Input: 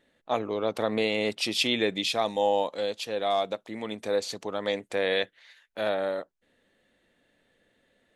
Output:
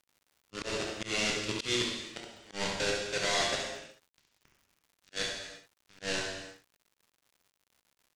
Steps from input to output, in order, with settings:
high-pass filter 440 Hz 12 dB per octave
spectral tilt −3.5 dB per octave
in parallel at −0.5 dB: downward compressor 8 to 1, threshold −36 dBFS, peak gain reduction 17 dB
on the sum: volume swells 300 ms
bit reduction 4 bits
low-pass filter 7,400 Hz 24 dB per octave
parametric band 720 Hz −12.5 dB 1.9 octaves
noise gate −33 dBFS, range −20 dB
on a send: ambience of single reflections 27 ms −10.5 dB, 69 ms −6.5 dB
on the sum: reverb whose tail is shaped and stops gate 390 ms falling, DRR −0.5 dB
surface crackle 170 per second −50 dBFS
volume swells 113 ms
level −3 dB

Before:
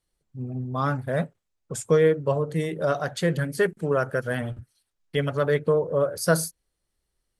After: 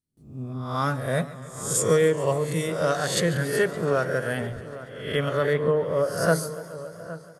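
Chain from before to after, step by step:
peak hold with a rise ahead of every peak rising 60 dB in 0.58 s
noise gate with hold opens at −50 dBFS
high-shelf EQ 4,000 Hz +11.5 dB, from 0:03.20 +3 dB, from 0:05.53 −6.5 dB
slap from a distant wall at 140 metres, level −15 dB
feedback echo with a swinging delay time 141 ms, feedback 79%, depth 120 cents, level −18 dB
level −1.5 dB

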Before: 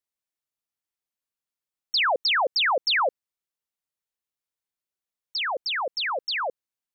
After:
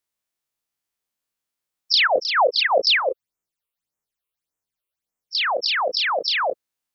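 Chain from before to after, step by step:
every bin's largest magnitude spread in time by 60 ms
0:02.07–0:05.41: all-pass phaser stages 8, 1.7 Hz, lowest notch 210–4,300 Hz
level +2.5 dB

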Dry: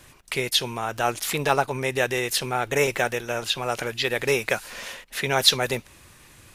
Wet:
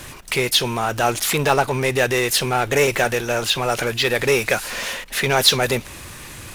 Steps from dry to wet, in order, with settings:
power curve on the samples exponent 0.7
every ending faded ahead of time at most 440 dB per second

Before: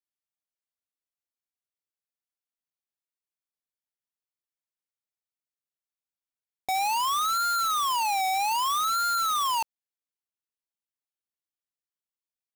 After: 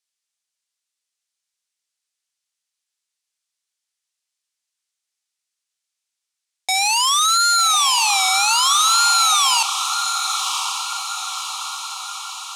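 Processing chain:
meter weighting curve ITU-R 468
feedback delay with all-pass diffusion 1,093 ms, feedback 57%, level −7 dB
level +4.5 dB

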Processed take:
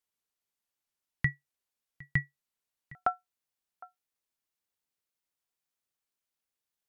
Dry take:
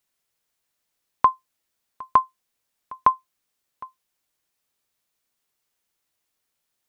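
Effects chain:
ring modulation 900 Hz, from 0:02.95 310 Hz
level −8.5 dB

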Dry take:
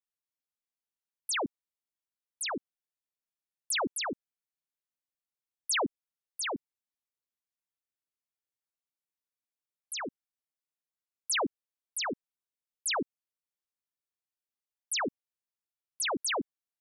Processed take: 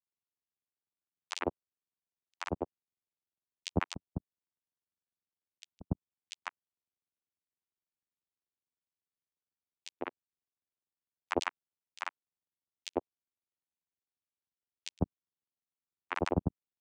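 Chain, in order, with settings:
granular cloud 39 ms, grains 20 per second, pitch spread up and down by 0 semitones
channel vocoder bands 4, saw 88.6 Hz
level +3.5 dB

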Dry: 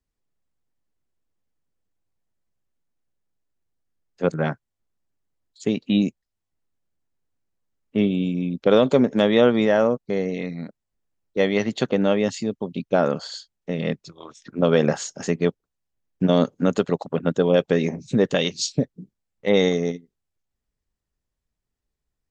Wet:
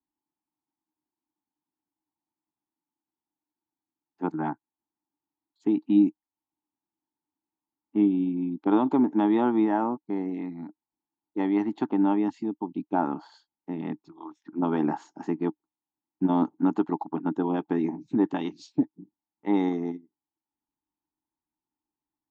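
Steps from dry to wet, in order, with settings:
pair of resonant band-passes 520 Hz, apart 1.5 octaves
level +7 dB

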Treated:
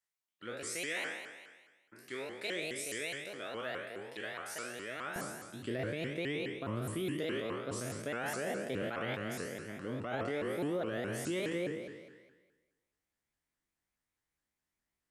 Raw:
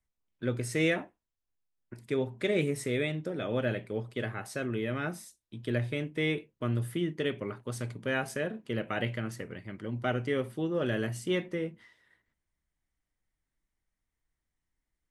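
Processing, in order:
peak hold with a decay on every bin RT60 1.29 s
high-pass filter 1,500 Hz 6 dB per octave, from 0:05.16 200 Hz
dynamic equaliser 2,600 Hz, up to −3 dB, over −46 dBFS, Q 0.77
brickwall limiter −25 dBFS, peak gain reduction 9 dB
pitch modulation by a square or saw wave saw up 4.8 Hz, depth 250 cents
level −2.5 dB

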